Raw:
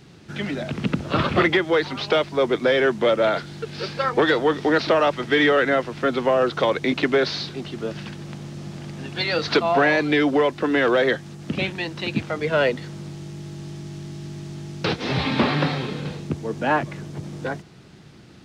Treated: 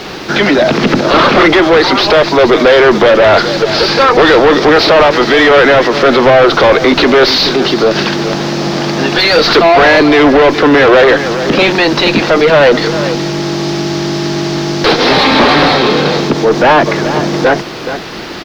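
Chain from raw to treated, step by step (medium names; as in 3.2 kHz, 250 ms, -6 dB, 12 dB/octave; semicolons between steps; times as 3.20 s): high-pass 370 Hz 12 dB/octave; resonant high shelf 3.8 kHz +9.5 dB, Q 1.5; word length cut 8-bit, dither triangular; one-sided clip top -29.5 dBFS, bottom -26.5 dBFS; distance through air 270 m; delay 424 ms -14.5 dB; loudness maximiser +30 dB; trim -1 dB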